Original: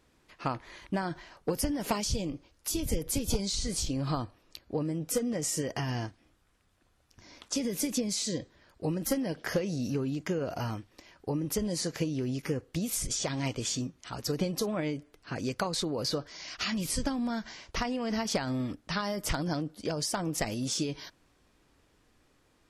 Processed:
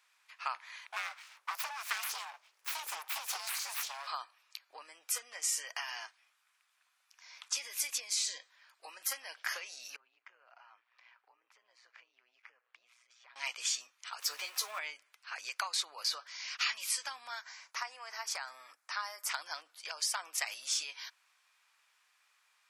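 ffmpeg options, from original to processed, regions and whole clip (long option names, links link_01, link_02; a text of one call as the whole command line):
ffmpeg -i in.wav -filter_complex "[0:a]asettb=1/sr,asplit=3[link_01][link_02][link_03];[link_01]atrim=end=0.874[link_04];[link_02]atrim=start=0.87:end=4.07,asetpts=PTS-STARTPTS,afade=type=in:duration=0.004:curve=qsin,afade=type=out:start_time=3.196:duration=0.004:curve=qsin,aeval=exprs='val(0)+0.00126*(sin(2*PI*50*n/s)+sin(2*PI*2*50*n/s)/2+sin(2*PI*3*50*n/s)/3+sin(2*PI*4*50*n/s)/4+sin(2*PI*5*50*n/s)/5)':channel_layout=same,afreqshift=140,aeval=exprs='abs(val(0))':channel_layout=same[link_05];[link_03]atrim=start=4.066[link_06];[link_04][link_05]acrossfade=duration=0.004:curve1=hsin:curve2=qsin[link_07];[link_07][link_06]acrossfade=duration=0.004:curve1=qsin:curve2=hsin,asettb=1/sr,asplit=3[link_08][link_09][link_10];[link_08]atrim=end=9.964[link_11];[link_09]atrim=start=9.96:end=13.36,asetpts=PTS-STARTPTS,afade=type=in:duration=0.004:curve=qsin,afade=type=out:start_time=3.396:duration=0.004:curve=qsin,tremolo=f=120:d=0.621,acompressor=threshold=-48dB:ratio=4:attack=3.2:release=140:knee=1:detection=peak,lowpass=2200[link_12];[link_10]atrim=start=13.356[link_13];[link_11][link_12]acrossfade=duration=0.004:curve1=hsin:curve2=qsin[link_14];[link_14][link_13]acrossfade=duration=0.004:curve1=qsin:curve2=hsin,asettb=1/sr,asplit=3[link_15][link_16][link_17];[link_15]atrim=end=14.214[link_18];[link_16]atrim=start=14.21:end=14.79,asetpts=PTS-STARTPTS,afade=type=in:duration=0.004:curve=qsin,afade=type=out:start_time=0.576:duration=0.004:curve=qsin,aeval=exprs='val(0)+0.5*0.00841*sgn(val(0))':channel_layout=same,asplit=2[link_19][link_20];[link_20]adelay=14,volume=-5.5dB[link_21];[link_19][link_21]amix=inputs=2:normalize=0,atrim=end_sample=25578[link_22];[link_17]atrim=start=14.786[link_23];[link_18][link_22]acrossfade=duration=0.004:curve1=hsin:curve2=qsin[link_24];[link_24][link_23]acrossfade=duration=0.004:curve1=qsin:curve2=hsin,asettb=1/sr,asplit=3[link_25][link_26][link_27];[link_25]atrim=end=17.414[link_28];[link_26]atrim=start=17.41:end=19.31,asetpts=PTS-STARTPTS,afade=type=in:duration=0.004:curve=qsin,afade=type=out:start_time=1.896:duration=0.004:curve=qsin,highpass=frequency=330:poles=1,equalizer=frequency=3100:width=1.3:gain=-10.5[link_29];[link_27]atrim=start=19.306[link_30];[link_28][link_29]acrossfade=duration=0.004:curve1=hsin:curve2=qsin[link_31];[link_31][link_30]acrossfade=duration=0.004:curve1=qsin:curve2=hsin,highpass=frequency=1000:width=0.5412,highpass=frequency=1000:width=1.3066,equalizer=frequency=2400:width_type=o:width=0.26:gain=5" out.wav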